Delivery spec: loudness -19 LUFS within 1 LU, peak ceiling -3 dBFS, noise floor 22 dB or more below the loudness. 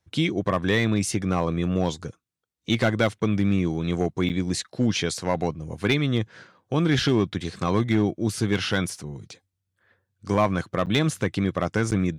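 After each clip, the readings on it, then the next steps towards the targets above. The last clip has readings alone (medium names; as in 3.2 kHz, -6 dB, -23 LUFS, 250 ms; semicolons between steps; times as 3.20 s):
clipped samples 0.3%; clipping level -12.5 dBFS; dropouts 3; longest dropout 8.1 ms; loudness -24.5 LUFS; peak level -12.5 dBFS; loudness target -19.0 LUFS
-> clip repair -12.5 dBFS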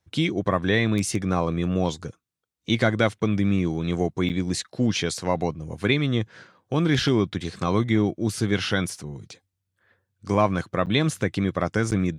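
clipped samples 0.0%; dropouts 3; longest dropout 8.1 ms
-> interpolate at 4.29/10.86/11.91 s, 8.1 ms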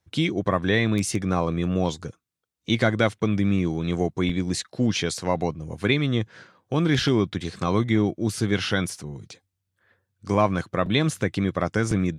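dropouts 0; loudness -24.5 LUFS; peak level -5.5 dBFS; loudness target -19.0 LUFS
-> trim +5.5 dB; peak limiter -3 dBFS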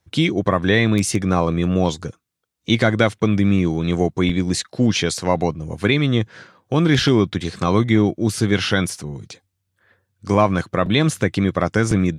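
loudness -19.0 LUFS; peak level -3.0 dBFS; noise floor -74 dBFS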